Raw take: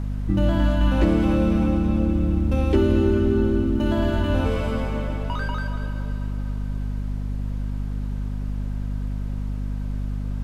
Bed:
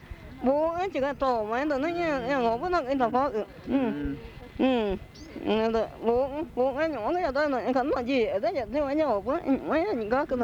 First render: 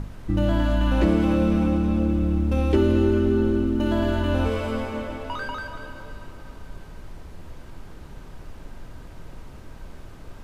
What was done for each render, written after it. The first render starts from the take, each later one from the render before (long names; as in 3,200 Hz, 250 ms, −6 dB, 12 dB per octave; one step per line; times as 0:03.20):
mains-hum notches 50/100/150/200/250 Hz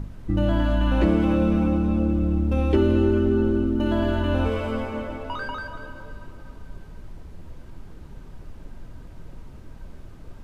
broadband denoise 6 dB, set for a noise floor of −42 dBFS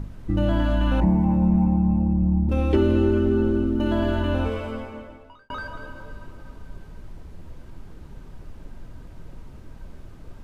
0:01.00–0:02.49: drawn EQ curve 110 Hz 0 dB, 170 Hz +10 dB, 250 Hz −5 dB, 500 Hz −14 dB, 900 Hz +7 dB, 1,300 Hz −21 dB, 1,900 Hz −8 dB, 3,100 Hz −24 dB, 6,600 Hz −12 dB
0:04.22–0:05.50: fade out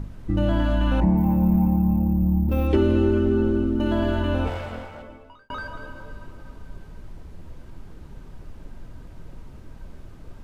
0:01.17–0:02.67: bad sample-rate conversion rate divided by 3×, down filtered, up hold
0:04.47–0:05.03: lower of the sound and its delayed copy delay 1.4 ms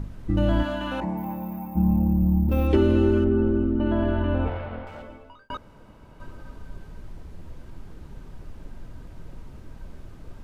0:00.62–0:01.75: high-pass filter 320 Hz → 1,400 Hz 6 dB per octave
0:03.24–0:04.87: high-frequency loss of the air 400 metres
0:05.57–0:06.20: fill with room tone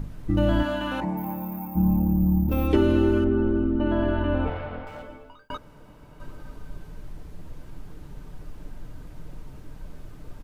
high-shelf EQ 11,000 Hz +8.5 dB
comb filter 6.7 ms, depth 31%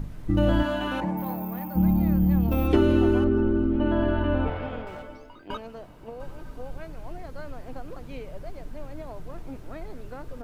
mix in bed −16 dB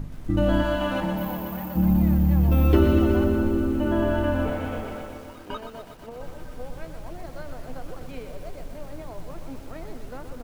double-tracking delay 12 ms −14 dB
feedback echo at a low word length 123 ms, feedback 80%, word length 8 bits, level −8 dB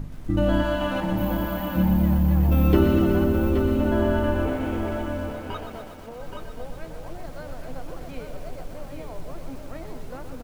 single-tap delay 825 ms −6 dB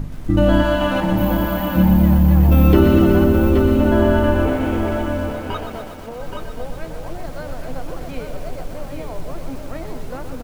level +7 dB
brickwall limiter −2 dBFS, peak gain reduction 2.5 dB